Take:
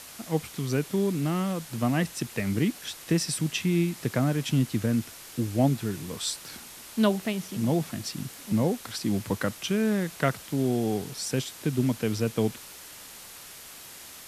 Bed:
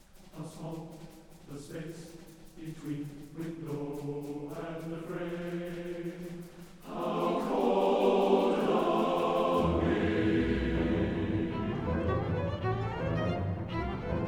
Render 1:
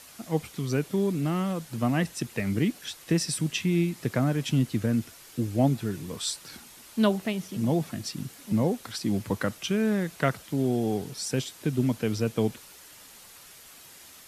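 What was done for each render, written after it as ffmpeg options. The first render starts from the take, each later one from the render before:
-af "afftdn=nr=6:nf=-46"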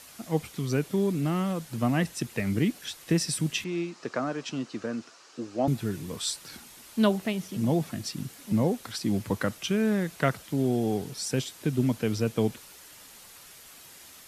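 -filter_complex "[0:a]asettb=1/sr,asplit=3[a][b][c];[a]atrim=end=3.644[d];[b]atrim=start=3.64:end=5.68,asetpts=PTS-STARTPTS,afade=t=in:d=0.004:c=qsin,afade=t=out:st=2.036:d=0.004:c=qsin,highpass=350,equalizer=f=1.2k:t=q:w=4:g=5,equalizer=f=2.1k:t=q:w=4:g=-6,equalizer=f=3.4k:t=q:w=4:g=-6,lowpass=f=6.5k:w=0.5412,lowpass=f=6.5k:w=1.3066[e];[c]atrim=start=5.676[f];[d][e]acrossfade=d=0.004:c1=hsin:c2=qsin[g];[g][f]acrossfade=d=0.004:c1=qsin:c2=hsin"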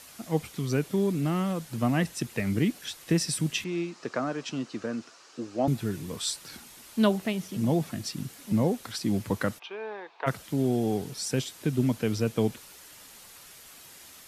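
-filter_complex "[0:a]asplit=3[a][b][c];[a]afade=t=out:st=9.58:d=0.02[d];[b]highpass=f=490:w=0.5412,highpass=f=490:w=1.3066,equalizer=f=580:t=q:w=4:g=-10,equalizer=f=890:t=q:w=4:g=9,equalizer=f=1.4k:t=q:w=4:g=-8,equalizer=f=2k:t=q:w=4:g=-9,equalizer=f=3k:t=q:w=4:g=-8,lowpass=f=3.2k:w=0.5412,lowpass=f=3.2k:w=1.3066,afade=t=in:st=9.58:d=0.02,afade=t=out:st=10.26:d=0.02[e];[c]afade=t=in:st=10.26:d=0.02[f];[d][e][f]amix=inputs=3:normalize=0"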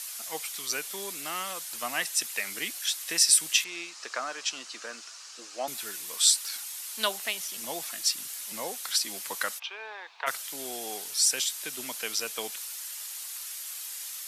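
-af "highpass=860,equalizer=f=12k:t=o:w=2.8:g=13"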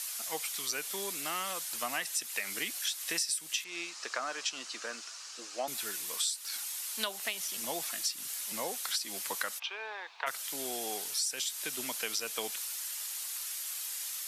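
-af "acompressor=threshold=-30dB:ratio=8"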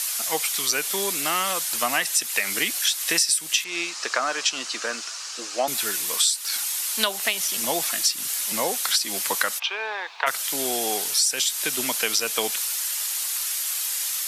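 -af "volume=11.5dB"

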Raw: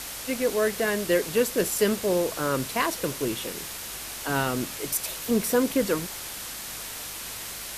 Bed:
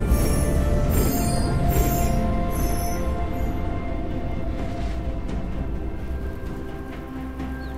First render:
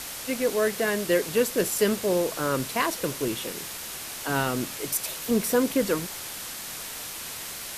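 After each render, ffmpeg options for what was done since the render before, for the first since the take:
-af "bandreject=f=50:t=h:w=4,bandreject=f=100:t=h:w=4"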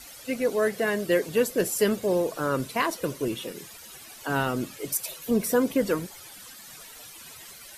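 -af "afftdn=nr=14:nf=-37"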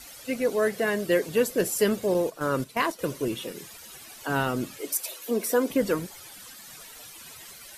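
-filter_complex "[0:a]asettb=1/sr,asplit=3[a][b][c];[a]atrim=end=2.144[d];[b]atrim=start=2.14:end=2.99,asetpts=PTS-STARTPTS,afade=t=in:d=0.004:c=qsin,afade=t=out:st=0.846:d=0.004:c=qsin,agate=range=-9dB:threshold=-31dB:ratio=16:release=100:detection=peak[e];[c]atrim=start=2.986[f];[d][e]acrossfade=d=0.004:c1=hsin:c2=qsin[g];[g][f]acrossfade=d=0.004:c1=qsin:c2=hsin,asettb=1/sr,asplit=3[h][i][j];[h]atrim=end=4.814[k];[i]atrim=start=4.81:end=5.7,asetpts=PTS-STARTPTS,afade=t=in:d=0.004:c=qsin,afade=t=out:st=0.886:d=0.004:c=qsin,highpass=f=260:w=0.5412,highpass=f=260:w=1.3066[l];[j]atrim=start=5.696[m];[k][l]acrossfade=d=0.004:c1=hsin:c2=qsin[n];[n][m]acrossfade=d=0.004:c1=qsin:c2=hsin"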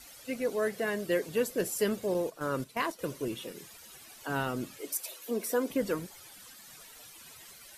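-af "volume=-6dB"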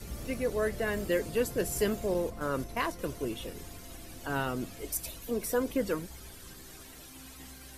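-filter_complex "[1:a]volume=-21dB[a];[0:a][a]amix=inputs=2:normalize=0"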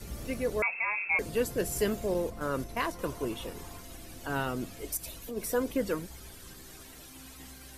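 -filter_complex "[0:a]asettb=1/sr,asplit=3[a][b][c];[a]atrim=end=0.624[d];[b]atrim=start=0.62:end=1.19,asetpts=PTS-STARTPTS,afade=t=in:d=0.004:c=qsin,afade=t=out:st=0.566:d=0.004:c=qsin,lowpass=f=2.3k:t=q:w=0.5098,lowpass=f=2.3k:t=q:w=0.6013,lowpass=f=2.3k:t=q:w=0.9,lowpass=f=2.3k:t=q:w=2.563,afreqshift=-2700[e];[c]atrim=start=1.186[f];[d][e]acrossfade=d=0.004:c1=hsin:c2=qsin[g];[g][f]acrossfade=d=0.004:c1=qsin:c2=hsin,asettb=1/sr,asplit=3[h][i][j];[h]atrim=end=2.944[k];[i]atrim=start=2.94:end=3.82,asetpts=PTS-STARTPTS,afade=t=in:d=0.004:c=qsin,afade=t=out:st=0.876:d=0.004:c=qsin,equalizer=f=980:w=1.7:g=8.5[l];[j]atrim=start=3.816[m];[k][l]acrossfade=d=0.004:c1=hsin:c2=qsin[n];[n][m]acrossfade=d=0.004:c1=qsin:c2=hsin,asplit=3[o][p][q];[o]afade=t=out:st=4.96:d=0.02[r];[p]acompressor=threshold=-36dB:ratio=3:attack=3.2:release=140:knee=1:detection=peak,afade=t=in:st=4.96:d=0.02,afade=t=out:st=5.36:d=0.02[s];[q]afade=t=in:st=5.36:d=0.02[t];[r][s][t]amix=inputs=3:normalize=0"

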